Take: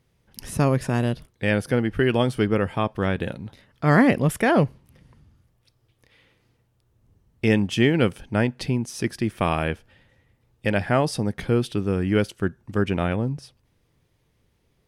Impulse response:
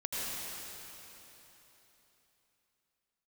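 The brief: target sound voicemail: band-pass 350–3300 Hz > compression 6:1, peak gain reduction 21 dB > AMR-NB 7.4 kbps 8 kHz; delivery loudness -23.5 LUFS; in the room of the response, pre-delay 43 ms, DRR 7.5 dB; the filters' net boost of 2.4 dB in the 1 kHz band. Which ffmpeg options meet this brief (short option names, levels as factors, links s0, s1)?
-filter_complex "[0:a]equalizer=f=1000:t=o:g=3.5,asplit=2[s0][s1];[1:a]atrim=start_sample=2205,adelay=43[s2];[s1][s2]afir=irnorm=-1:irlink=0,volume=0.224[s3];[s0][s3]amix=inputs=2:normalize=0,highpass=350,lowpass=3300,acompressor=threshold=0.0178:ratio=6,volume=7.08" -ar 8000 -c:a libopencore_amrnb -b:a 7400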